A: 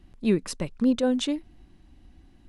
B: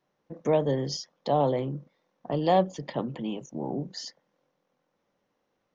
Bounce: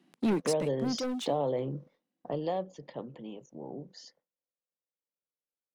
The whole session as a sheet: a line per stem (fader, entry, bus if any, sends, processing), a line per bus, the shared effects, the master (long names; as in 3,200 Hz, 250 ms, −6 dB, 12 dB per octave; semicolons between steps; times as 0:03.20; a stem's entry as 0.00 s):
+1.5 dB, 0.00 s, no send, Butterworth high-pass 170 Hz 36 dB per octave; leveller curve on the samples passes 3; automatic ducking −22 dB, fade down 1.40 s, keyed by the second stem
0:02.18 −3 dB → 0:02.58 −12 dB, 0.00 s, no send, noise gate with hold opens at −52 dBFS; parametric band 480 Hz +5.5 dB 0.8 octaves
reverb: not used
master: downward compressor 2.5 to 1, threshold −28 dBFS, peak gain reduction 7.5 dB